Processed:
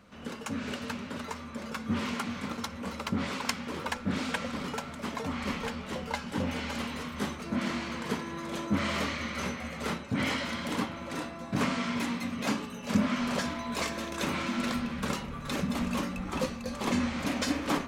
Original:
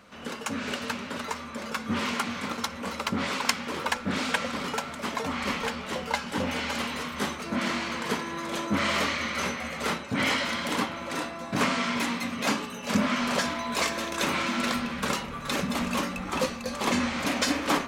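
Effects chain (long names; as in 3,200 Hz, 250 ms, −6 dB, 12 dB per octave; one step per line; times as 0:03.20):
low-shelf EQ 280 Hz +9.5 dB
level −6.5 dB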